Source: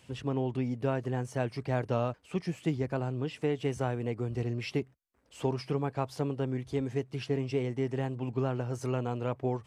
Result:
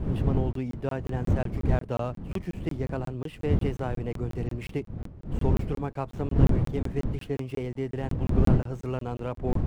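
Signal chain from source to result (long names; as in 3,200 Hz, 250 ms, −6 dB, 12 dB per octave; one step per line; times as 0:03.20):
running median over 9 samples
wind on the microphone 150 Hz −28 dBFS
regular buffer underruns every 0.18 s, samples 1,024, zero, from 0:00.53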